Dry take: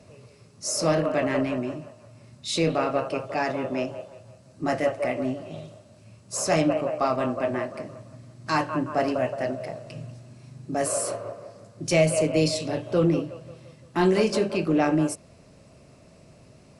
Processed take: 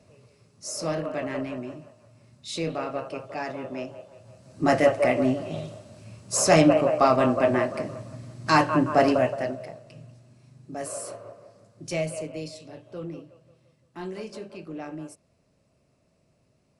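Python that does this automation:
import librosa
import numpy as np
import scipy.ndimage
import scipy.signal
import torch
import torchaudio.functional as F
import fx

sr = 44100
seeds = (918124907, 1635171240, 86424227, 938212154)

y = fx.gain(x, sr, db=fx.line((4.03, -6.0), (4.66, 5.0), (9.12, 5.0), (9.83, -8.0), (11.99, -8.0), (12.51, -15.0)))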